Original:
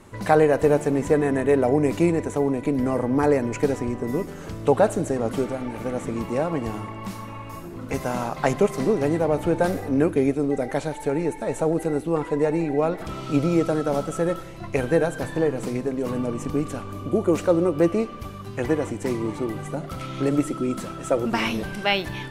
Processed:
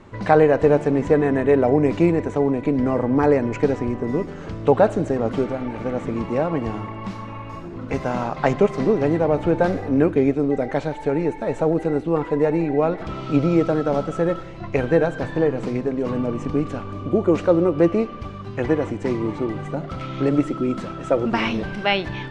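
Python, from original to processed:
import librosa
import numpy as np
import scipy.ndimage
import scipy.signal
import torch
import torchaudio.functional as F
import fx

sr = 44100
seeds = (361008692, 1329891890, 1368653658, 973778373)

y = fx.air_absorb(x, sr, metres=140.0)
y = y * 10.0 ** (3.0 / 20.0)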